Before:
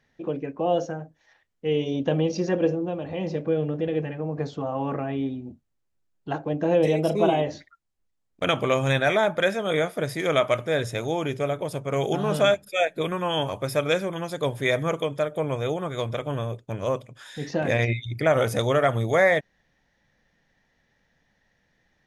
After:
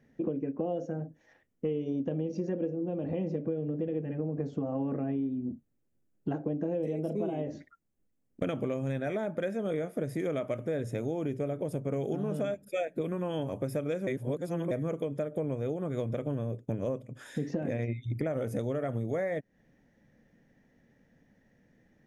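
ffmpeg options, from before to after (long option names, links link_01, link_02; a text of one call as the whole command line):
ffmpeg -i in.wav -filter_complex "[0:a]asplit=3[link_01][link_02][link_03];[link_01]atrim=end=14.072[link_04];[link_02]atrim=start=14.068:end=14.712,asetpts=PTS-STARTPTS,areverse[link_05];[link_03]atrim=start=14.708[link_06];[link_04][link_05]acrossfade=duration=0.004:curve1=hsin:curve2=hsin[link_07];[link_07][link_06]acrossfade=duration=0.004:curve1=hsin:curve2=hsin,equalizer=frequency=125:width_type=o:width=1:gain=5,equalizer=frequency=250:width_type=o:width=1:gain=11,equalizer=frequency=500:width_type=o:width=1:gain=5,equalizer=frequency=1000:width_type=o:width=1:gain=-5,equalizer=frequency=4000:width_type=o:width=1:gain=-10,acompressor=threshold=-28dB:ratio=10,volume=-1dB" out.wav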